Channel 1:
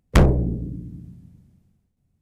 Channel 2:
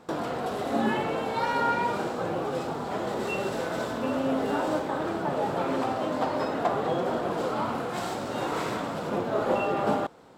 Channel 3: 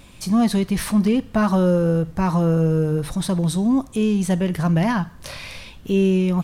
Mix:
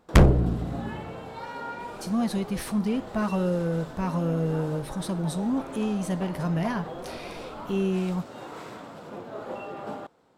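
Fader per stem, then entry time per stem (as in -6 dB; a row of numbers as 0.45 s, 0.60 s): -1.0 dB, -10.5 dB, -8.5 dB; 0.00 s, 0.00 s, 1.80 s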